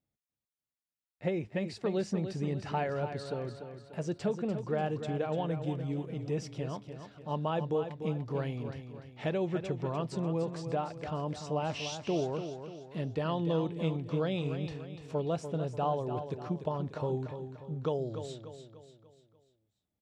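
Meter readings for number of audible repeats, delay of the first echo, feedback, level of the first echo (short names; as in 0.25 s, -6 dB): 4, 0.294 s, 45%, -9.0 dB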